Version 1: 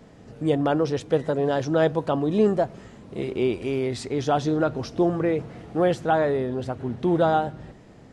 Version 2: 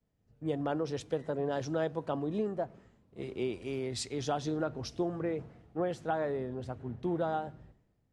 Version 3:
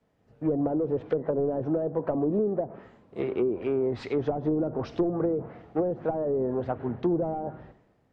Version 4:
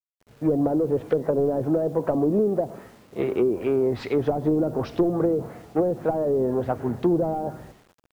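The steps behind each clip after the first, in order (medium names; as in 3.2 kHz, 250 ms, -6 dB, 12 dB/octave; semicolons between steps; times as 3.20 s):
compression 10:1, threshold -21 dBFS, peak gain reduction 7.5 dB; three bands expanded up and down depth 100%; trim -7.5 dB
overdrive pedal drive 19 dB, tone 1.1 kHz, clips at -19 dBFS; low-pass that closes with the level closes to 430 Hz, closed at -26 dBFS; trim +5.5 dB
bit crusher 10-bit; trim +4.5 dB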